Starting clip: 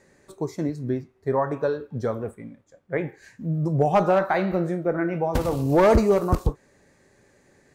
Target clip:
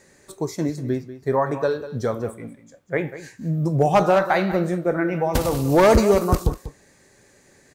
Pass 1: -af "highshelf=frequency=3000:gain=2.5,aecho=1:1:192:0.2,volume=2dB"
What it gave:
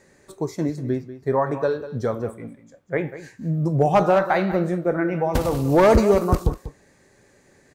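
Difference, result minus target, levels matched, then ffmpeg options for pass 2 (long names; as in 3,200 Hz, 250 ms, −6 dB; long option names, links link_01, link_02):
8,000 Hz band −5.5 dB
-af "highshelf=frequency=3000:gain=9,aecho=1:1:192:0.2,volume=2dB"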